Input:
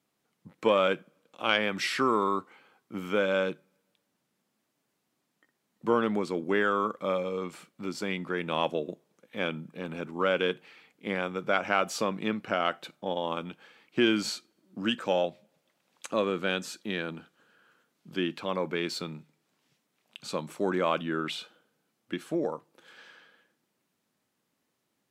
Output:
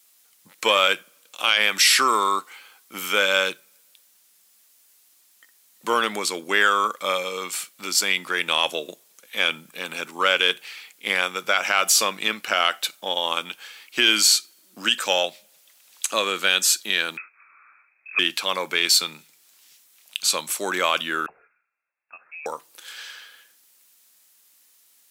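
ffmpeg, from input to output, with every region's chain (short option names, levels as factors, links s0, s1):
-filter_complex "[0:a]asettb=1/sr,asplit=3[s0][s1][s2];[s0]atrim=end=17.174[s3];[s1]atrim=start=17.17:end=18.19,asetpts=PTS-STARTPTS,afade=t=in:d=0.004:c=qsin,afade=t=out:st=1.016:d=0.004:c=qsin,highpass=f=240:w=0.5412,highpass=f=240:w=1.3066,lowpass=f=2400:t=q:w=0.5098,lowpass=f=2400:t=q:w=0.6013,lowpass=f=2400:t=q:w=0.9,lowpass=f=2400:t=q:w=2.563,afreqshift=-2800[s4];[s2]atrim=start=18.186[s5];[s3][s4]acrossfade=d=0.004:c1=hsin:c2=qsin[s6];[s6][s5]acrossfade=d=0.004:c1=qsin:c2=hsin,asettb=1/sr,asplit=3[s7][s8][s9];[s7]atrim=end=21.264[s10];[s8]atrim=start=21.26:end=22.46,asetpts=PTS-STARTPTS,afade=t=in:d=0.004:c=qsin,afade=t=out:st=1.196:d=0.004:c=qsin,aderivative,lowpass=f=2500:t=q:w=0.5098,lowpass=f=2500:t=q:w=0.6013,lowpass=f=2500:t=q:w=0.9,lowpass=f=2500:t=q:w=2.563,afreqshift=-2900[s11];[s9]atrim=start=22.456[s12];[s10][s11]acrossfade=d=0.004:c1=hsin:c2=qsin[s13];[s13][s12]acrossfade=d=0.004:c1=qsin:c2=hsin,aderivative,alimiter=level_in=28.2:limit=0.891:release=50:level=0:latency=1,volume=0.562"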